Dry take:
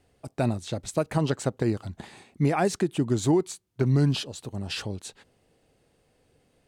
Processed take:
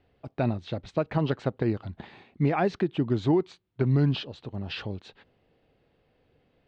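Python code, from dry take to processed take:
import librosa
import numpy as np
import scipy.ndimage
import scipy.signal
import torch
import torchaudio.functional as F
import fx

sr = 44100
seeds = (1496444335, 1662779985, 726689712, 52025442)

y = scipy.signal.sosfilt(scipy.signal.butter(4, 3800.0, 'lowpass', fs=sr, output='sos'), x)
y = y * librosa.db_to_amplitude(-1.0)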